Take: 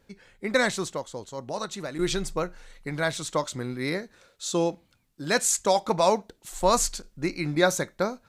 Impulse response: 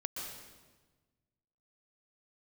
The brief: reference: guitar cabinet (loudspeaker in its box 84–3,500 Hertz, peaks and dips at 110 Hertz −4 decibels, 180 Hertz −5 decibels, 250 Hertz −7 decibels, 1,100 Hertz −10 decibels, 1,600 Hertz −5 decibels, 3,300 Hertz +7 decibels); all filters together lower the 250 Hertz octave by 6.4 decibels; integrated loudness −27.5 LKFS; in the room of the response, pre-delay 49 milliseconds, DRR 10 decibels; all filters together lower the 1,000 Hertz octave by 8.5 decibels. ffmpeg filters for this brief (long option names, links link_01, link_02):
-filter_complex "[0:a]equalizer=frequency=250:width_type=o:gain=-5,equalizer=frequency=1000:width_type=o:gain=-7,asplit=2[link_01][link_02];[1:a]atrim=start_sample=2205,adelay=49[link_03];[link_02][link_03]afir=irnorm=-1:irlink=0,volume=-11dB[link_04];[link_01][link_04]amix=inputs=2:normalize=0,highpass=84,equalizer=frequency=110:width_type=q:width=4:gain=-4,equalizer=frequency=180:width_type=q:width=4:gain=-5,equalizer=frequency=250:width_type=q:width=4:gain=-7,equalizer=frequency=1100:width_type=q:width=4:gain=-10,equalizer=frequency=1600:width_type=q:width=4:gain=-5,equalizer=frequency=3300:width_type=q:width=4:gain=7,lowpass=frequency=3500:width=0.5412,lowpass=frequency=3500:width=1.3066,volume=4.5dB"